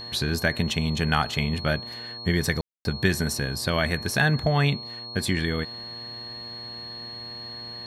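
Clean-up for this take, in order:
hum removal 118.1 Hz, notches 10
notch filter 4,300 Hz, Q 30
ambience match 0:02.61–0:02.85

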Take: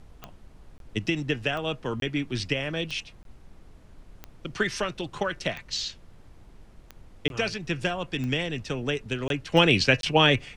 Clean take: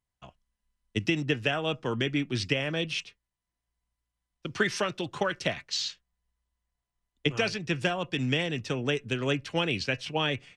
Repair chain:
click removal
repair the gap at 0:00.78/0:02.00/0:03.23/0:07.28/0:09.28/0:10.01, 22 ms
noise reduction from a noise print 30 dB
level correction −9 dB, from 0:09.52

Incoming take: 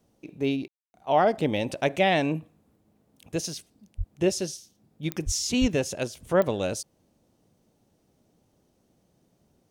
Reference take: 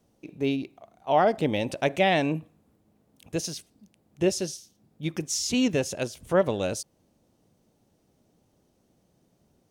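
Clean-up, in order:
click removal
high-pass at the plosives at 0:03.97/0:05.25/0:05.60
ambience match 0:00.68–0:00.94

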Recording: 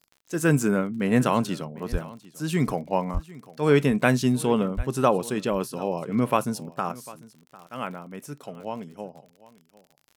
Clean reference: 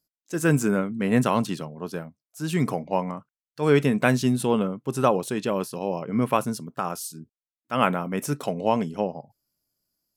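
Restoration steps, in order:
click removal
high-pass at the plosives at 0:01.91/0:03.13/0:04.76
echo removal 749 ms −20 dB
level correction +11 dB, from 0:06.92

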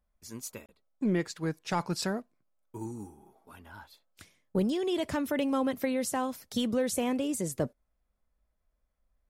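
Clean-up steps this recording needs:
repair the gap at 0:00.66, 27 ms

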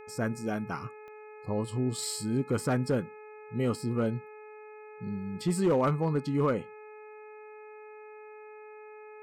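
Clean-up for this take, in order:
clipped peaks rebuilt −19.5 dBFS
click removal
hum removal 426.8 Hz, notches 5
notch filter 2,500 Hz, Q 30

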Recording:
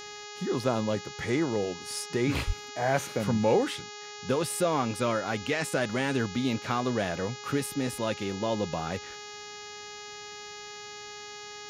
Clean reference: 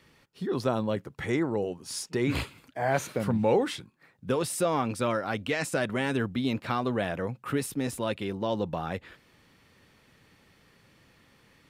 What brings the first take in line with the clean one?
hum removal 415.4 Hz, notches 17
0:02.46–0:02.58: high-pass filter 140 Hz 24 dB per octave

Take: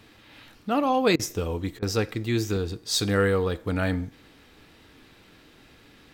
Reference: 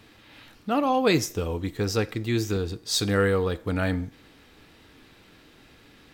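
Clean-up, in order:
repair the gap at 0:01.16/0:01.79, 33 ms

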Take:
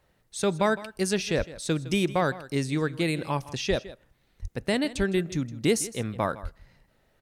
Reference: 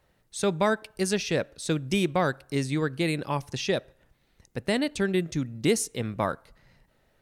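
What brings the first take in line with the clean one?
high-pass at the plosives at 0:01.37/0:03.69/0:04.41/0:04.97/0:06.42
echo removal 160 ms −17 dB

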